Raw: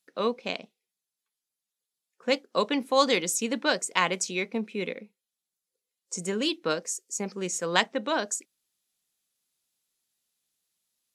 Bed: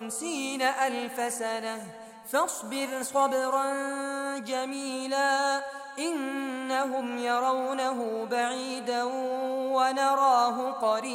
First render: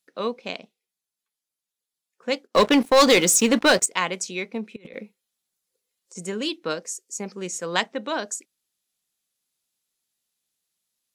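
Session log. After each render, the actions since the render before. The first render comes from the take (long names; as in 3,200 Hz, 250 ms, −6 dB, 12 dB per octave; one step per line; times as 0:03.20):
0:02.47–0:03.86: leveller curve on the samples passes 3
0:04.76–0:06.17: compressor whose output falls as the input rises −39 dBFS, ratio −0.5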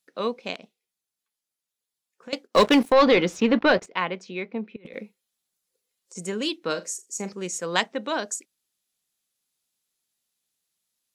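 0:00.55–0:02.33: downward compressor, threshold −37 dBFS
0:02.92–0:04.86: high-frequency loss of the air 290 metres
0:06.64–0:07.33: flutter between parallel walls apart 7 metres, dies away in 0.2 s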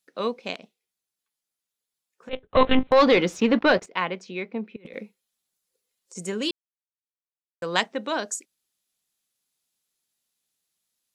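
0:02.29–0:02.92: one-pitch LPC vocoder at 8 kHz 260 Hz
0:06.51–0:07.62: silence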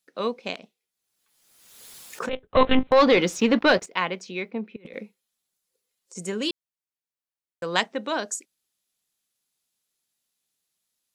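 0:00.46–0:02.43: background raised ahead of every attack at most 42 dB per second
0:03.18–0:04.51: high-shelf EQ 4,800 Hz +9 dB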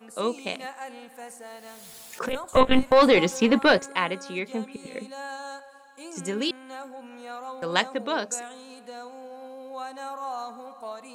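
mix in bed −11.5 dB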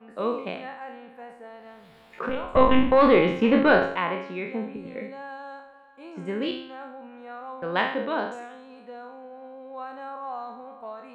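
peak hold with a decay on every bin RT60 0.64 s
high-frequency loss of the air 470 metres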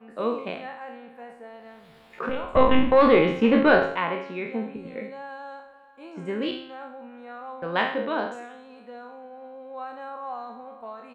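double-tracking delay 13 ms −12.5 dB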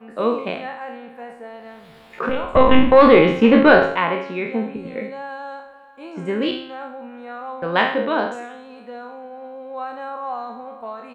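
level +6.5 dB
brickwall limiter −1 dBFS, peak gain reduction 3 dB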